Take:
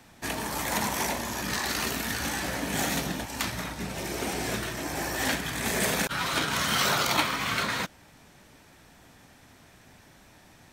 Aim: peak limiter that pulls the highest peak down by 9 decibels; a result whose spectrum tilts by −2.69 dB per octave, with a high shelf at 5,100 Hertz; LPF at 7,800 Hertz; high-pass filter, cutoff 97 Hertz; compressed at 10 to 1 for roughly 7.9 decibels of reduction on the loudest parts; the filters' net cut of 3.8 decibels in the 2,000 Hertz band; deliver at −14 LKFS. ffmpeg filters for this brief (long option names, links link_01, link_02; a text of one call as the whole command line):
ffmpeg -i in.wav -af "highpass=97,lowpass=7800,equalizer=frequency=2000:width_type=o:gain=-5.5,highshelf=frequency=5100:gain=4.5,acompressor=threshold=-30dB:ratio=10,volume=20.5dB,alimiter=limit=-4.5dB:level=0:latency=1" out.wav